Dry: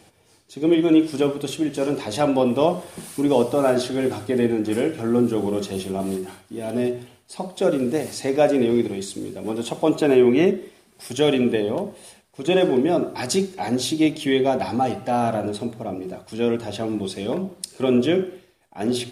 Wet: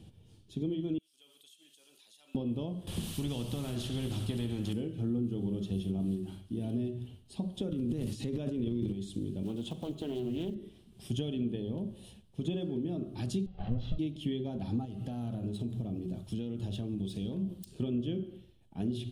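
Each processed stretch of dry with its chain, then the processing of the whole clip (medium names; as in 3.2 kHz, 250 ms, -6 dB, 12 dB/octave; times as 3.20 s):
0.98–2.35 s: high-pass 1 kHz 6 dB/octave + differentiator + compression 4:1, threshold -47 dBFS
2.87–4.73 s: band-stop 1.5 kHz, Q 15 + spectrum-flattening compressor 2:1
7.70–8.93 s: high-pass 52 Hz + peaking EQ 710 Hz -10 dB 0.34 oct + transient shaper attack -3 dB, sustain +11 dB
9.43–10.56 s: block-companded coder 5-bit + bass shelf 490 Hz -4.5 dB + loudspeaker Doppler distortion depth 0.29 ms
13.46–13.99 s: comb filter that takes the minimum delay 1.5 ms + distance through air 290 m + doubling 48 ms -13 dB
14.85–17.67 s: self-modulated delay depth 0.052 ms + treble shelf 4.9 kHz +7 dB + compression 2.5:1, threshold -32 dBFS
whole clip: bass shelf 180 Hz +9.5 dB; compression 4:1, threshold -28 dBFS; FFT filter 190 Hz 0 dB, 650 Hz -15 dB, 2.2 kHz -19 dB, 3.1 kHz -4 dB, 4.9 kHz -15 dB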